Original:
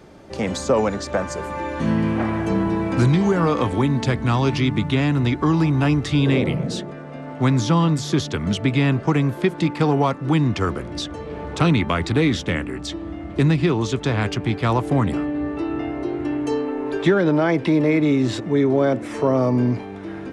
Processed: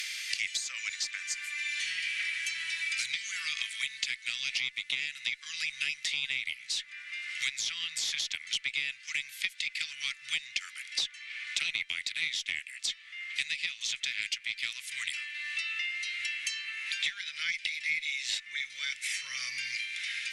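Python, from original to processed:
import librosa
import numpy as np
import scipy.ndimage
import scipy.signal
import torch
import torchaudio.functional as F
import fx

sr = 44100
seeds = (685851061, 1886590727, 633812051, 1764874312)

y = scipy.signal.sosfilt(scipy.signal.ellip(4, 1.0, 60, 2100.0, 'highpass', fs=sr, output='sos'), x)
y = fx.cheby_harmonics(y, sr, harmonics=(2,), levels_db=(-22,), full_scale_db=-14.5)
y = fx.band_squash(y, sr, depth_pct=100)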